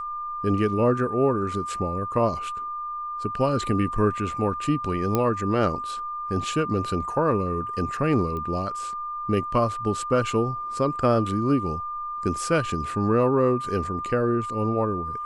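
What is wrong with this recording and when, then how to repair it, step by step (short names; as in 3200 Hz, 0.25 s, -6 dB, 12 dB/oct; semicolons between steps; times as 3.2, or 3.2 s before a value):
tone 1200 Hz -29 dBFS
5.15 pop -9 dBFS
8.37 pop -22 dBFS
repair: de-click; notch 1200 Hz, Q 30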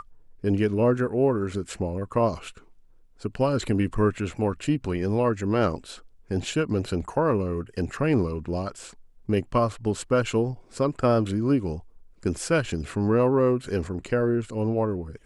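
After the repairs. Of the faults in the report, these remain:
none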